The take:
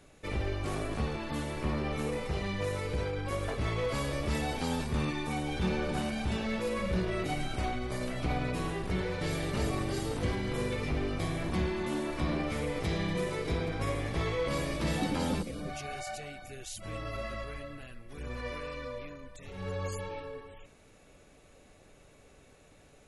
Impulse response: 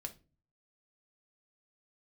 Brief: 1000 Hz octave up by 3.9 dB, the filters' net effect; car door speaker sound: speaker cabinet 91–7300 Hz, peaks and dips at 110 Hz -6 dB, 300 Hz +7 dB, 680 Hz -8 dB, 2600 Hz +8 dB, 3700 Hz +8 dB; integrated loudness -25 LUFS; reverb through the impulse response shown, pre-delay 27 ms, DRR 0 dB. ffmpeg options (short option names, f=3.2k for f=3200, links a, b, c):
-filter_complex "[0:a]equalizer=f=1k:t=o:g=7,asplit=2[a][b];[1:a]atrim=start_sample=2205,adelay=27[c];[b][c]afir=irnorm=-1:irlink=0,volume=3dB[d];[a][d]amix=inputs=2:normalize=0,highpass=91,equalizer=f=110:t=q:w=4:g=-6,equalizer=f=300:t=q:w=4:g=7,equalizer=f=680:t=q:w=4:g=-8,equalizer=f=2.6k:t=q:w=4:g=8,equalizer=f=3.7k:t=q:w=4:g=8,lowpass=f=7.3k:w=0.5412,lowpass=f=7.3k:w=1.3066,volume=3dB"